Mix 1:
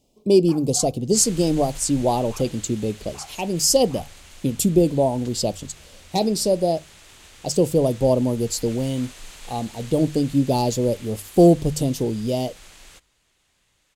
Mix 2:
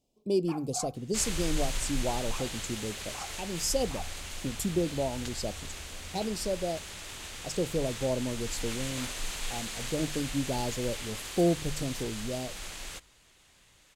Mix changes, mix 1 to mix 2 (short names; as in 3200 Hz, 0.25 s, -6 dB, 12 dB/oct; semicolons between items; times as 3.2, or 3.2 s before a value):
speech -12.0 dB; second sound +5.5 dB